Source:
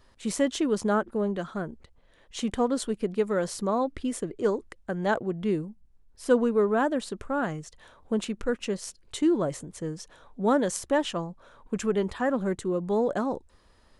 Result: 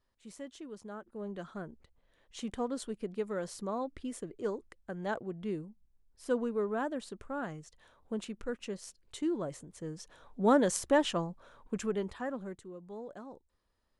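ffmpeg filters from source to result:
-af "volume=-1.5dB,afade=t=in:st=1.03:d=0.41:silence=0.298538,afade=t=in:st=9.74:d=0.8:silence=0.398107,afade=t=out:st=11.14:d=0.85:silence=0.473151,afade=t=out:st=11.99:d=0.7:silence=0.281838"

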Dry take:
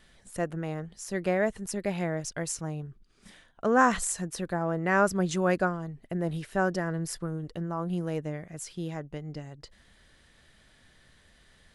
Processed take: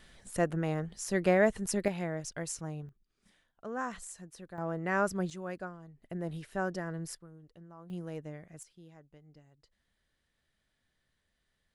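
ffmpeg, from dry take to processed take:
-af "asetnsamples=n=441:p=0,asendcmd='1.88 volume volume -5dB;2.89 volume volume -15dB;4.58 volume volume -6dB;5.3 volume volume -14.5dB;6.02 volume volume -7dB;7.15 volume volume -19dB;7.9 volume volume -9dB;8.63 volume volume -19.5dB',volume=1.5dB"

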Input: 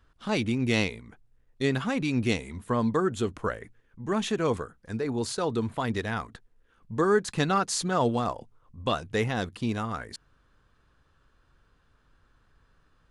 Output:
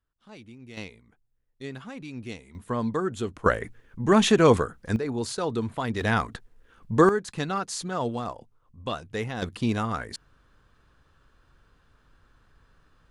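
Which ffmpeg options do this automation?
-af "asetnsamples=n=441:p=0,asendcmd='0.77 volume volume -11.5dB;2.55 volume volume -2dB;3.46 volume volume 9dB;4.96 volume volume 0dB;6.01 volume volume 7.5dB;7.09 volume volume -4dB;9.42 volume volume 3.5dB',volume=-19.5dB"

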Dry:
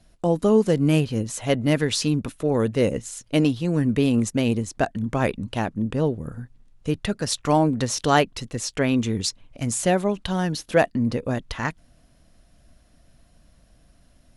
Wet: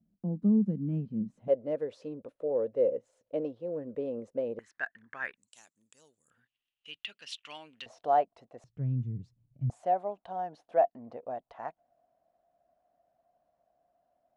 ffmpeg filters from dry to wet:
-af "asetnsamples=n=441:p=0,asendcmd='1.48 bandpass f 530;4.59 bandpass f 1700;5.37 bandpass f 7500;6.3 bandpass f 2900;7.86 bandpass f 690;8.64 bandpass f 130;9.7 bandpass f 710',bandpass=f=200:t=q:w=6.5:csg=0"

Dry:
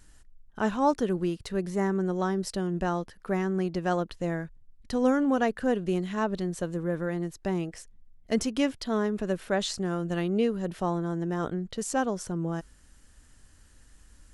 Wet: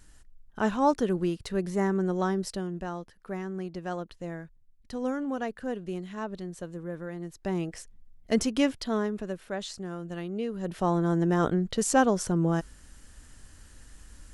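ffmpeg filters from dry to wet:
-af "volume=21.5dB,afade=t=out:st=2.31:d=0.51:silence=0.421697,afade=t=in:st=7.19:d=0.56:silence=0.375837,afade=t=out:st=8.72:d=0.65:silence=0.375837,afade=t=in:st=10.46:d=0.67:silence=0.237137"

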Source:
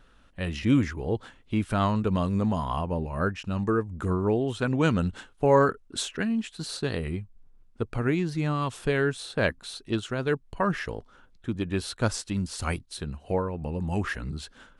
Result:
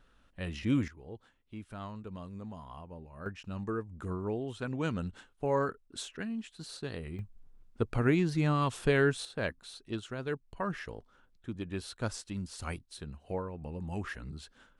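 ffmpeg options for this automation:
-af "asetnsamples=n=441:p=0,asendcmd='0.88 volume volume -18dB;3.26 volume volume -10dB;7.19 volume volume -1dB;9.25 volume volume -9dB',volume=-7dB"

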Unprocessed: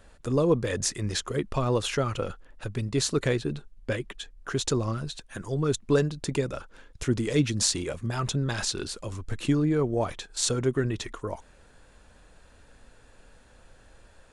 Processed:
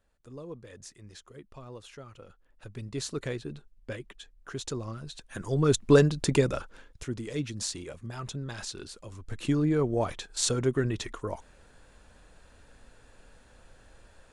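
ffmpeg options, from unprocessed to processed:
-af "volume=12dB,afade=t=in:st=2.26:d=0.63:silence=0.281838,afade=t=in:st=5.02:d=0.81:silence=0.237137,afade=t=out:st=6.46:d=0.61:silence=0.223872,afade=t=in:st=9.14:d=0.52:silence=0.398107"

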